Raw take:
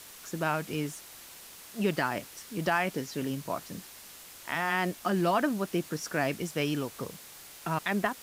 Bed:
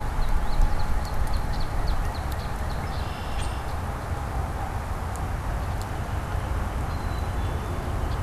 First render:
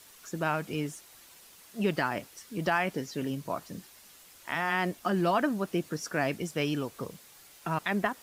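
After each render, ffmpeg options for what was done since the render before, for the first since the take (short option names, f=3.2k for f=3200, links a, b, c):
-af "afftdn=nr=7:nf=-49"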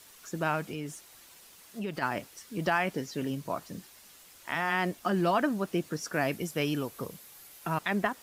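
-filter_complex "[0:a]asplit=3[a][b][c];[a]afade=t=out:st=0.68:d=0.02[d];[b]acompressor=threshold=-34dB:ratio=2.5:attack=3.2:release=140:knee=1:detection=peak,afade=t=in:st=0.68:d=0.02,afade=t=out:st=2.01:d=0.02[e];[c]afade=t=in:st=2.01:d=0.02[f];[d][e][f]amix=inputs=3:normalize=0,asettb=1/sr,asplit=3[g][h][i];[g]atrim=end=6.134[j];[h]atrim=start=6.13:end=7.79,asetpts=PTS-STARTPTS,afade=t=in:d=0.004:c=qsin,afade=t=out:st=1.656:d=0.004:c=qsin,equalizer=f=12k:t=o:w=0.35:g=8.5[k];[i]atrim=start=7.786[l];[j][k]acrossfade=d=0.004:c1=hsin:c2=qsin[m];[m][l]acrossfade=d=0.004:c1=qsin:c2=hsin"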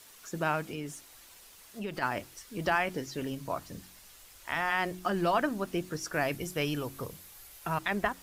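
-af "bandreject=f=45.6:t=h:w=4,bandreject=f=91.2:t=h:w=4,bandreject=f=136.8:t=h:w=4,bandreject=f=182.4:t=h:w=4,bandreject=f=228:t=h:w=4,bandreject=f=273.6:t=h:w=4,bandreject=f=319.2:t=h:w=4,bandreject=f=364.8:t=h:w=4,asubboost=boost=7:cutoff=71"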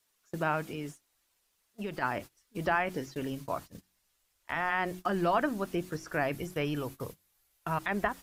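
-filter_complex "[0:a]agate=range=-21dB:threshold=-41dB:ratio=16:detection=peak,acrossover=split=2600[a][b];[b]acompressor=threshold=-48dB:ratio=4:attack=1:release=60[c];[a][c]amix=inputs=2:normalize=0"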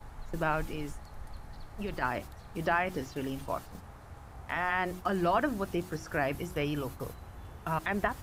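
-filter_complex "[1:a]volume=-19dB[a];[0:a][a]amix=inputs=2:normalize=0"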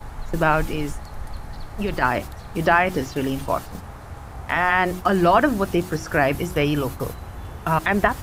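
-af "volume=11.5dB"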